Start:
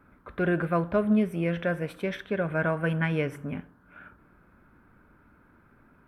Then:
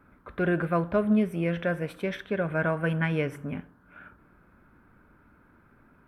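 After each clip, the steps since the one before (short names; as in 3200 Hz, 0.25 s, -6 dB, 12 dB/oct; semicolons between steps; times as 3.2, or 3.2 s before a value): nothing audible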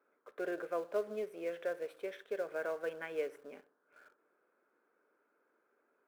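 ladder high-pass 390 Hz, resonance 55%; bell 950 Hz -2.5 dB 0.28 oct; in parallel at -12 dB: companded quantiser 4-bit; on the sum: gain -6 dB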